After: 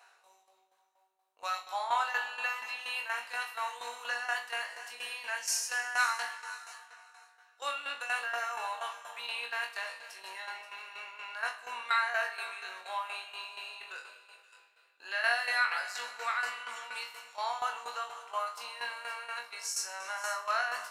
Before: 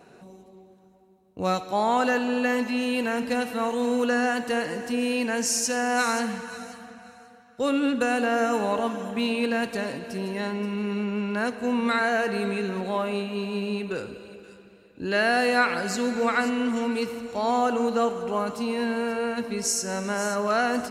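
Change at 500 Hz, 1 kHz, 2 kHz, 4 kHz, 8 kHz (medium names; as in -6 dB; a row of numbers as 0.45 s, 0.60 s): -19.5 dB, -7.5 dB, -4.0 dB, -5.0 dB, -8.0 dB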